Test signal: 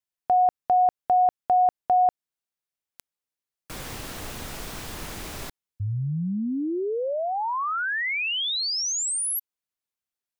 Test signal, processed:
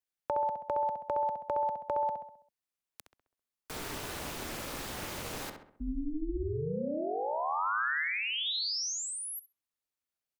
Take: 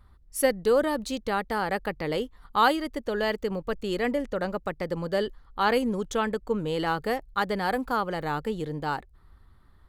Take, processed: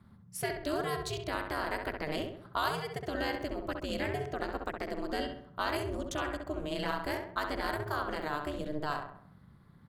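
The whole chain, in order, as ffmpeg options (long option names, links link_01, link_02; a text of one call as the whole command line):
ffmpeg -i in.wav -filter_complex "[0:a]acrossover=split=100|1400|4800[link_01][link_02][link_03][link_04];[link_01]acompressor=threshold=-53dB:ratio=4[link_05];[link_02]acompressor=threshold=-32dB:ratio=4[link_06];[link_03]acompressor=threshold=-34dB:ratio=4[link_07];[link_04]acompressor=threshold=-38dB:ratio=4[link_08];[link_05][link_06][link_07][link_08]amix=inputs=4:normalize=0,aeval=exprs='val(0)*sin(2*PI*150*n/s)':channel_layout=same,asplit=2[link_09][link_10];[link_10]adelay=66,lowpass=frequency=2300:poles=1,volume=-4.5dB,asplit=2[link_11][link_12];[link_12]adelay=66,lowpass=frequency=2300:poles=1,volume=0.5,asplit=2[link_13][link_14];[link_14]adelay=66,lowpass=frequency=2300:poles=1,volume=0.5,asplit=2[link_15][link_16];[link_16]adelay=66,lowpass=frequency=2300:poles=1,volume=0.5,asplit=2[link_17][link_18];[link_18]adelay=66,lowpass=frequency=2300:poles=1,volume=0.5,asplit=2[link_19][link_20];[link_20]adelay=66,lowpass=frequency=2300:poles=1,volume=0.5[link_21];[link_09][link_11][link_13][link_15][link_17][link_19][link_21]amix=inputs=7:normalize=0" out.wav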